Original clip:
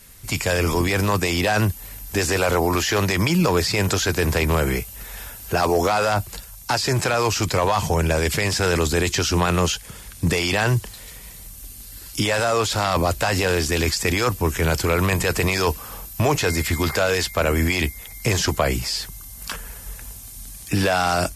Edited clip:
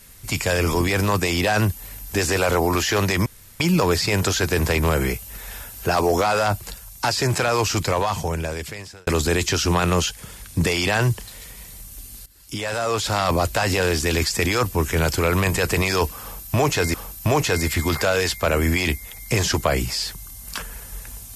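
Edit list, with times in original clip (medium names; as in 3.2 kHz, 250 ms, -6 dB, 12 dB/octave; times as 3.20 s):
3.26 s: insert room tone 0.34 s
7.40–8.73 s: fade out
11.92–12.83 s: fade in, from -18.5 dB
15.88–16.60 s: loop, 2 plays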